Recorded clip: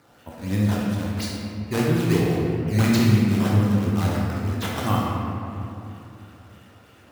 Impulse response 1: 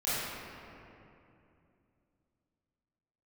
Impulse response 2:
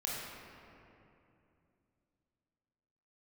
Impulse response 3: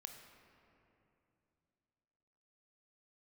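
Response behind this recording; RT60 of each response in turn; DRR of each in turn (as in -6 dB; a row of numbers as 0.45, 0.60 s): 2; 2.8, 2.8, 2.8 s; -13.0, -4.5, 5.0 dB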